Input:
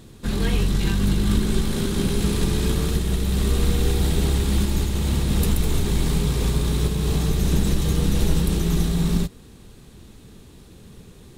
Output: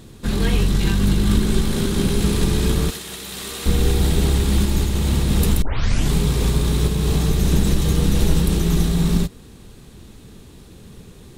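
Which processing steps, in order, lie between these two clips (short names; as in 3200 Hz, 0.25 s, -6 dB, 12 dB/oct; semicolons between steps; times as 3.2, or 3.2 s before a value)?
2.9–3.66 HPF 1300 Hz 6 dB/oct; 5.62 tape start 0.50 s; gain +3 dB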